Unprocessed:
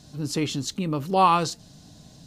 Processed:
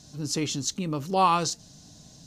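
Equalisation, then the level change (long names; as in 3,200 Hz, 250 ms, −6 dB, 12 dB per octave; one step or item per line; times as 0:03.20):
parametric band 6,200 Hz +8.5 dB 0.72 octaves
−3.0 dB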